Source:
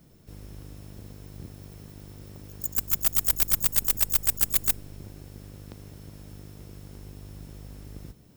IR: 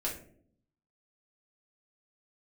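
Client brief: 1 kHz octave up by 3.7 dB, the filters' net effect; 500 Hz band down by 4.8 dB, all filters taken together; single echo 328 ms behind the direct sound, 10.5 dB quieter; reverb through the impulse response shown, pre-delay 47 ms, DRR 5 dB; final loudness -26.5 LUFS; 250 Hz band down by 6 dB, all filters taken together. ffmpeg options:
-filter_complex "[0:a]equalizer=f=250:t=o:g=-8.5,equalizer=f=500:t=o:g=-5.5,equalizer=f=1000:t=o:g=6.5,aecho=1:1:328:0.299,asplit=2[s0][s1];[1:a]atrim=start_sample=2205,adelay=47[s2];[s1][s2]afir=irnorm=-1:irlink=0,volume=0.376[s3];[s0][s3]amix=inputs=2:normalize=0,volume=0.596"

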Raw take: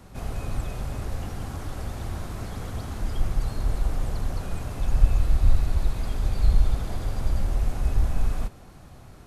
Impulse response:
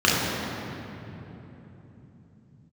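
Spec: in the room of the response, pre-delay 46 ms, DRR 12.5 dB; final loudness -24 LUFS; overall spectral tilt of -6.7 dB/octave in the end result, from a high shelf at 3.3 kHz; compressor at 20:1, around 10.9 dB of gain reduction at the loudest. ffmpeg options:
-filter_complex "[0:a]highshelf=f=3300:g=-3,acompressor=threshold=0.112:ratio=20,asplit=2[s0][s1];[1:a]atrim=start_sample=2205,adelay=46[s2];[s1][s2]afir=irnorm=-1:irlink=0,volume=0.0211[s3];[s0][s3]amix=inputs=2:normalize=0,volume=2.51"

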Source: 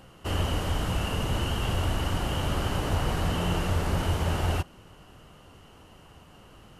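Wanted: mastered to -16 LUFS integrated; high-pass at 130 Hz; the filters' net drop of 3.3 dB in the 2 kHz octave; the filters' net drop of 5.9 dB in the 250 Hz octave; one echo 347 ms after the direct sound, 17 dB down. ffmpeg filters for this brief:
-af "highpass=130,equalizer=f=250:t=o:g=-8,equalizer=f=2000:t=o:g=-4.5,aecho=1:1:347:0.141,volume=7.08"

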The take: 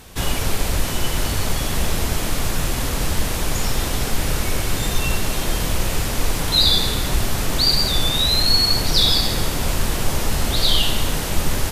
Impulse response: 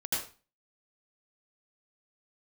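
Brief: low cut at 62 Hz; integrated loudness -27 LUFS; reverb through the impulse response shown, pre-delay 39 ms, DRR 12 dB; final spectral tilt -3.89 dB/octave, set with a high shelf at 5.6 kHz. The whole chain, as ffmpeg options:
-filter_complex "[0:a]highpass=62,highshelf=f=5600:g=-5.5,asplit=2[s0][s1];[1:a]atrim=start_sample=2205,adelay=39[s2];[s1][s2]afir=irnorm=-1:irlink=0,volume=0.133[s3];[s0][s3]amix=inputs=2:normalize=0,volume=0.562"

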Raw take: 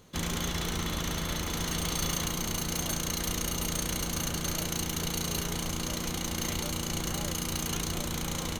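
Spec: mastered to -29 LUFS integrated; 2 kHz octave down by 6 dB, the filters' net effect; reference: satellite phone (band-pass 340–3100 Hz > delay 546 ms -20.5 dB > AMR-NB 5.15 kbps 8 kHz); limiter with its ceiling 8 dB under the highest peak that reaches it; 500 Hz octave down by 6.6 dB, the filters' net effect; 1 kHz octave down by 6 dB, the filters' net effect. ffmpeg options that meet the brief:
-af "equalizer=f=500:t=o:g=-5.5,equalizer=f=1000:t=o:g=-4.5,equalizer=f=2000:t=o:g=-5,alimiter=level_in=1.19:limit=0.0631:level=0:latency=1,volume=0.841,highpass=340,lowpass=3100,aecho=1:1:546:0.0944,volume=12.6" -ar 8000 -c:a libopencore_amrnb -b:a 5150

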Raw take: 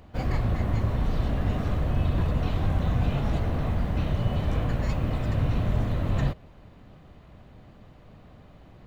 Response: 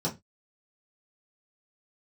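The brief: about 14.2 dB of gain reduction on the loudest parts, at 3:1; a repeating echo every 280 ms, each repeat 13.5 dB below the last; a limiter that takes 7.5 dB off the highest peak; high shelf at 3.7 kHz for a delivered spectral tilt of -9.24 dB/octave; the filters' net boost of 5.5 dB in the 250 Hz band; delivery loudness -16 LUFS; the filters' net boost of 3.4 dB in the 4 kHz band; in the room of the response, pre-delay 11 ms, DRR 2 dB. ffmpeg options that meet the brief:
-filter_complex "[0:a]equalizer=f=250:t=o:g=7.5,highshelf=f=3700:g=-3.5,equalizer=f=4000:t=o:g=6.5,acompressor=threshold=0.0112:ratio=3,alimiter=level_in=2.99:limit=0.0631:level=0:latency=1,volume=0.335,aecho=1:1:280|560:0.211|0.0444,asplit=2[s0][s1];[1:a]atrim=start_sample=2205,adelay=11[s2];[s1][s2]afir=irnorm=-1:irlink=0,volume=0.355[s3];[s0][s3]amix=inputs=2:normalize=0,volume=11.2"

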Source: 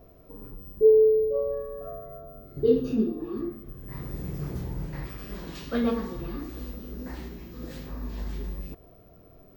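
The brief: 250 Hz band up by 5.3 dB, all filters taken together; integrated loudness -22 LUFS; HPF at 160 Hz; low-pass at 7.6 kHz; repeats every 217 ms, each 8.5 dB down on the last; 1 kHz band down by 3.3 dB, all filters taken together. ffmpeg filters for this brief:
-af "highpass=160,lowpass=7600,equalizer=f=250:t=o:g=7,equalizer=f=1000:t=o:g=-5,aecho=1:1:217|434|651|868:0.376|0.143|0.0543|0.0206,volume=1.33"

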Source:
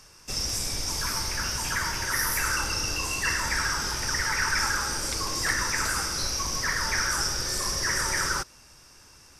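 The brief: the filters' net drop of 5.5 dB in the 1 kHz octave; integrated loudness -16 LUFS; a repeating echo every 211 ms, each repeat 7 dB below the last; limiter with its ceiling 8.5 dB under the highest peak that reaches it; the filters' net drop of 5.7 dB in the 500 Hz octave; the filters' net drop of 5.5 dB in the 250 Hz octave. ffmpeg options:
-af "equalizer=f=250:t=o:g=-6.5,equalizer=f=500:t=o:g=-3.5,equalizer=f=1000:t=o:g=-6.5,alimiter=limit=0.0841:level=0:latency=1,aecho=1:1:211|422|633|844|1055:0.447|0.201|0.0905|0.0407|0.0183,volume=4.22"

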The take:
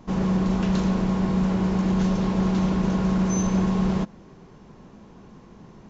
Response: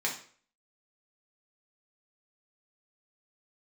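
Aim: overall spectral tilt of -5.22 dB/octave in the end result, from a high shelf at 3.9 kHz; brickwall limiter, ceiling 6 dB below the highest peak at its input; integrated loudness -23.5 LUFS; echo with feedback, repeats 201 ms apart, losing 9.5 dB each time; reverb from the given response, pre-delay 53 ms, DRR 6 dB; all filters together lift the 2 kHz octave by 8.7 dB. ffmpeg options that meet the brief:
-filter_complex "[0:a]equalizer=f=2000:t=o:g=9,highshelf=f=3900:g=9,alimiter=limit=0.141:level=0:latency=1,aecho=1:1:201|402|603|804:0.335|0.111|0.0365|0.012,asplit=2[s0][s1];[1:a]atrim=start_sample=2205,adelay=53[s2];[s1][s2]afir=irnorm=-1:irlink=0,volume=0.224[s3];[s0][s3]amix=inputs=2:normalize=0,volume=1.33"

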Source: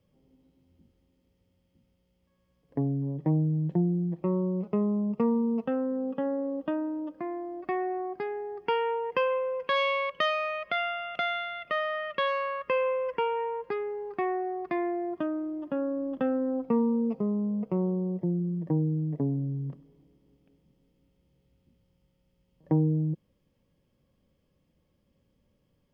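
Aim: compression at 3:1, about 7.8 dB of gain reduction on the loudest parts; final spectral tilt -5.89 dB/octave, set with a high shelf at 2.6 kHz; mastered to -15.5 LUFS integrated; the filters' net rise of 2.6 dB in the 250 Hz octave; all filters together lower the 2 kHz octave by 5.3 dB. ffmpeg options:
-af "equalizer=f=250:t=o:g=3.5,equalizer=f=2000:t=o:g=-5,highshelf=f=2600:g=-3,acompressor=threshold=0.0355:ratio=3,volume=7.08"

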